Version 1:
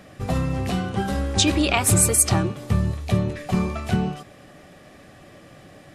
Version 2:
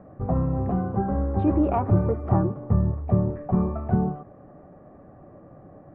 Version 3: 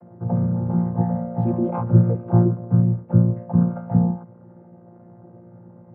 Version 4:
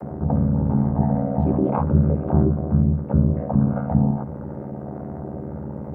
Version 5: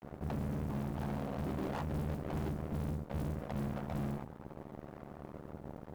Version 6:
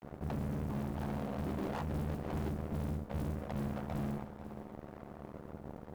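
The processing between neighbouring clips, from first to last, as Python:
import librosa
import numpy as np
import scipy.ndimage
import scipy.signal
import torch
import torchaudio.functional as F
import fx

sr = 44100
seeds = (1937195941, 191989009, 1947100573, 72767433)

y1 = scipy.signal.sosfilt(scipy.signal.butter(4, 1100.0, 'lowpass', fs=sr, output='sos'), x)
y2 = fx.chord_vocoder(y1, sr, chord='bare fifth', root=46)
y2 = y2 * librosa.db_to_amplitude(5.5)
y3 = y2 * np.sin(2.0 * np.pi * 37.0 * np.arange(len(y2)) / sr)
y3 = fx.env_flatten(y3, sr, amount_pct=50)
y3 = y3 * librosa.db_to_amplitude(-1.0)
y4 = np.sign(y3) * np.maximum(np.abs(y3) - 10.0 ** (-32.5 / 20.0), 0.0)
y4 = fx.mod_noise(y4, sr, seeds[0], snr_db=31)
y4 = fx.tube_stage(y4, sr, drive_db=27.0, bias=0.75)
y4 = y4 * librosa.db_to_amplitude(-6.5)
y5 = y4 + 10.0 ** (-13.5 / 20.0) * np.pad(y4, (int(491 * sr / 1000.0), 0))[:len(y4)]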